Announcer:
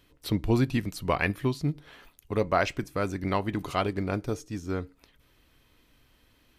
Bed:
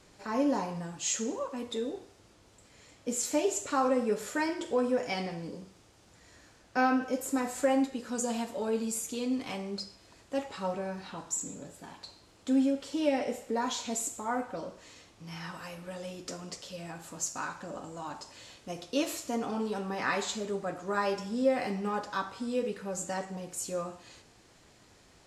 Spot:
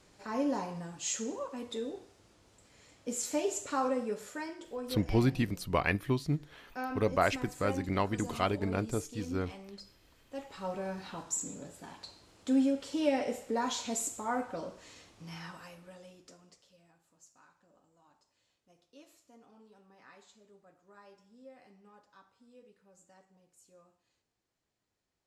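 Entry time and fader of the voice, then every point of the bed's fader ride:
4.65 s, -3.0 dB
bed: 3.84 s -3.5 dB
4.63 s -11.5 dB
10.23 s -11.5 dB
10.88 s -1 dB
15.23 s -1 dB
17.06 s -26.5 dB

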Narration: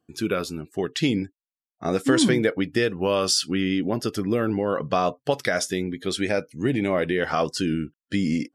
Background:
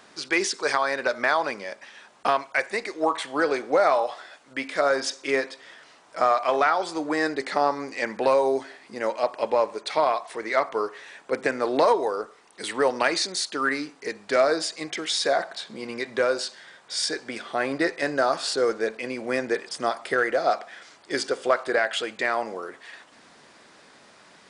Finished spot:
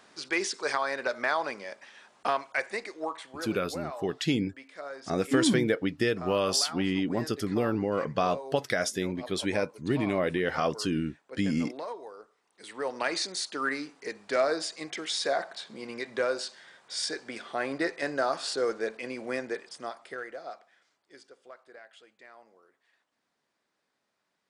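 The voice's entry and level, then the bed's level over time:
3.25 s, -4.5 dB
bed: 2.73 s -5.5 dB
3.58 s -18.5 dB
12.41 s -18.5 dB
13.16 s -5.5 dB
19.24 s -5.5 dB
21.30 s -27.5 dB

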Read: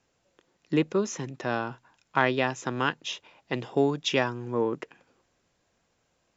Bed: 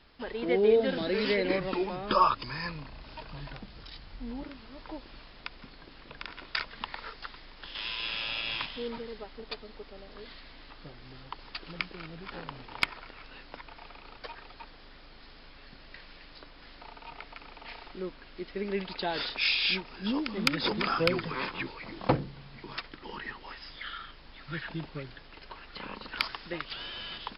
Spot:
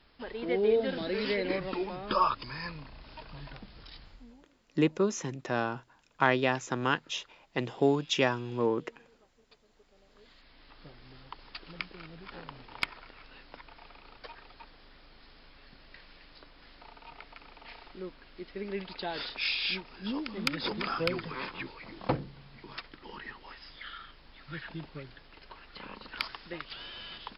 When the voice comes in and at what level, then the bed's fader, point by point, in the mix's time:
4.05 s, -1.5 dB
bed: 4.04 s -3 dB
4.46 s -22.5 dB
9.51 s -22.5 dB
10.83 s -4 dB

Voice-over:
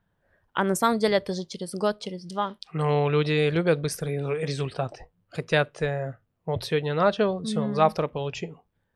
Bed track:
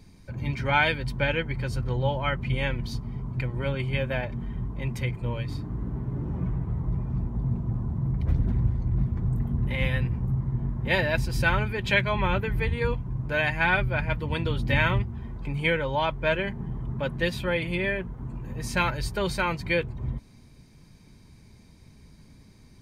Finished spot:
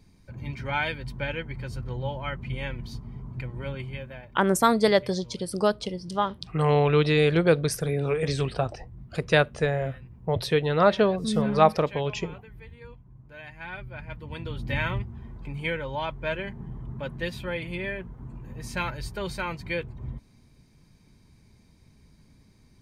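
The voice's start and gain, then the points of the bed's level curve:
3.80 s, +2.0 dB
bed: 3.78 s -5.5 dB
4.44 s -19.5 dB
13.34 s -19.5 dB
14.72 s -5 dB

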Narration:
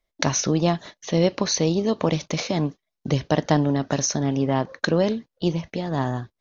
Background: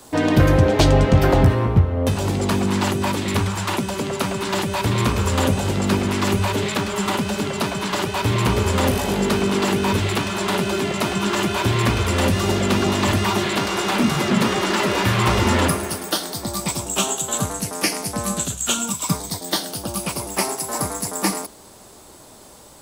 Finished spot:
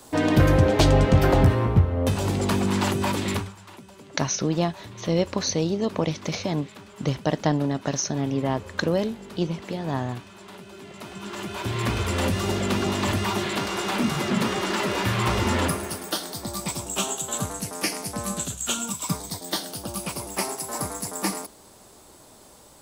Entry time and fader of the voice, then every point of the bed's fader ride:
3.95 s, -3.0 dB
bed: 3.32 s -3 dB
3.57 s -22 dB
10.70 s -22 dB
11.96 s -5.5 dB

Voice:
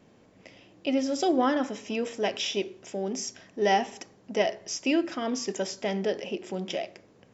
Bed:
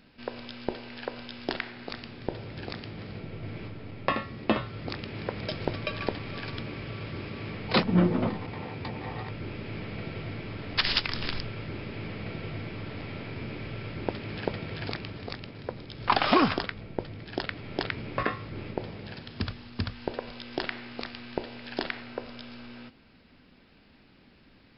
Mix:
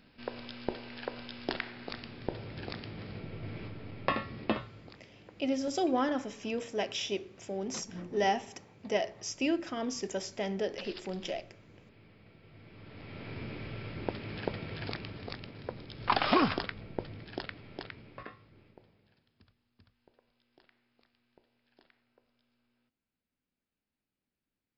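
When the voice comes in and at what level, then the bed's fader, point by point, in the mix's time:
4.55 s, -5.0 dB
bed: 4.42 s -3 dB
5.07 s -21.5 dB
12.42 s -21.5 dB
13.31 s -4 dB
17.17 s -4 dB
19.45 s -33 dB

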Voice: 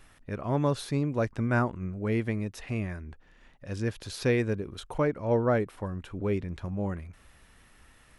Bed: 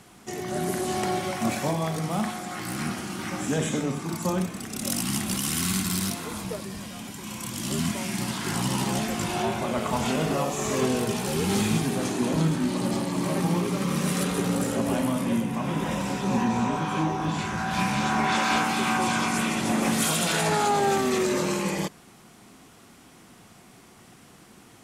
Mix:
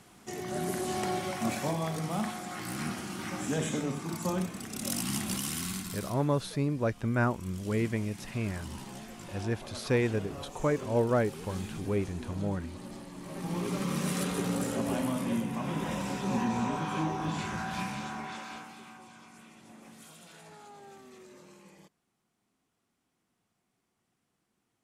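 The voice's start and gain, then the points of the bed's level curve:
5.65 s, -1.5 dB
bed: 5.34 s -5 dB
6.30 s -17.5 dB
13.23 s -17.5 dB
13.68 s -5.5 dB
17.55 s -5.5 dB
19.08 s -28 dB

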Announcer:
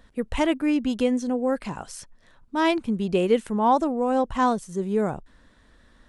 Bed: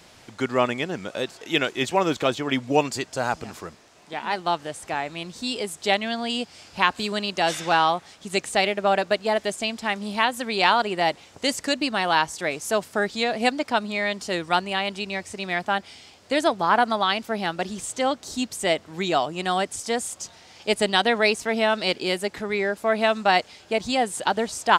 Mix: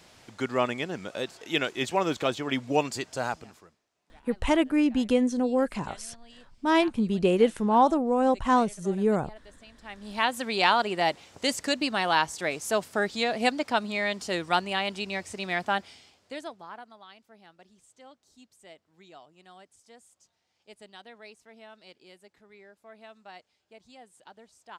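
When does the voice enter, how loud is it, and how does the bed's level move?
4.10 s, -0.5 dB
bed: 3.26 s -4.5 dB
3.86 s -26 dB
9.67 s -26 dB
10.26 s -3 dB
15.79 s -3 dB
16.91 s -28 dB

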